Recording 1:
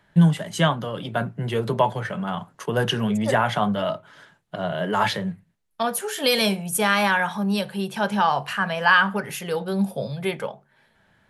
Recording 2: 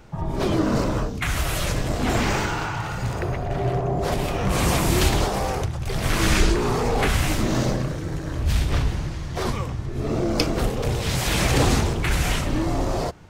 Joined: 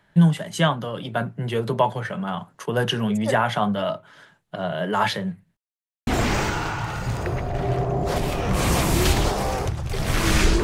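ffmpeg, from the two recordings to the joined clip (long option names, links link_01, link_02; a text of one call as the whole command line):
ffmpeg -i cue0.wav -i cue1.wav -filter_complex "[0:a]apad=whole_dur=10.63,atrim=end=10.63,asplit=2[link_01][link_02];[link_01]atrim=end=5.57,asetpts=PTS-STARTPTS,afade=type=out:start_time=5.566:duration=0.004:curve=hsin[link_03];[link_02]atrim=start=5.57:end=6.07,asetpts=PTS-STARTPTS,volume=0[link_04];[1:a]atrim=start=2.03:end=6.59,asetpts=PTS-STARTPTS,afade=type=in:duration=0.004:curve=hsin[link_05];[link_03][link_04][link_05]concat=n=3:v=0:a=1" out.wav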